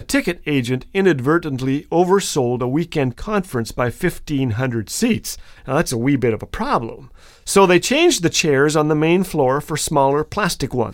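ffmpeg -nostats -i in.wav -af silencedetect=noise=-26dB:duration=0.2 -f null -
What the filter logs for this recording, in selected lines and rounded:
silence_start: 5.34
silence_end: 5.68 | silence_duration: 0.34
silence_start: 6.93
silence_end: 7.47 | silence_duration: 0.54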